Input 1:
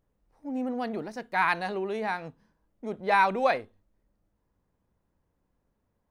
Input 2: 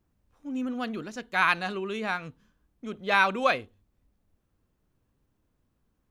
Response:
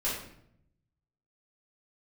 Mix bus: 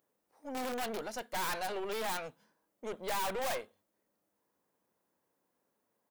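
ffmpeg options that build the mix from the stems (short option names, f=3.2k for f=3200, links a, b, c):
-filter_complex "[0:a]acontrast=30,volume=-3.5dB,asplit=2[a][b];[1:a]dynaudnorm=f=110:g=7:m=11.5dB,aeval=exprs='(mod(6.31*val(0)+1,2)-1)/6.31':c=same,adelay=1.2,volume=-12.5dB[c];[b]apad=whole_len=269409[d];[c][d]sidechaingate=range=-33dB:threshold=-54dB:ratio=16:detection=peak[e];[a][e]amix=inputs=2:normalize=0,highpass=320,highshelf=f=7.8k:g=10.5,aeval=exprs='(tanh(44.7*val(0)+0.45)-tanh(0.45))/44.7':c=same"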